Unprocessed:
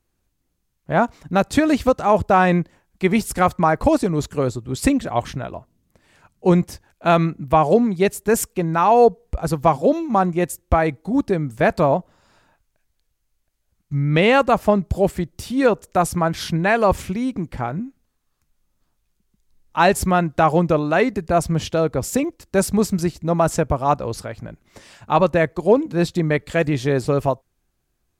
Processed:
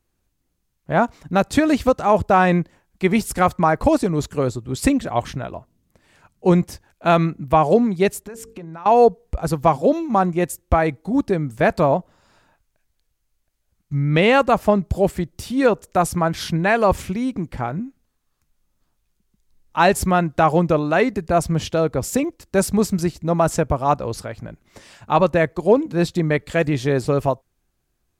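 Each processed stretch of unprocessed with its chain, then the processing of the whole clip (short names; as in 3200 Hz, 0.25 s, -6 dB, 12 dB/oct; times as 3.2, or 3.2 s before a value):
8.19–8.86 high shelf 9600 Hz -9.5 dB + notches 50/100/150/200/250/300/350/400/450 Hz + compressor 16:1, threshold -31 dBFS
whole clip: dry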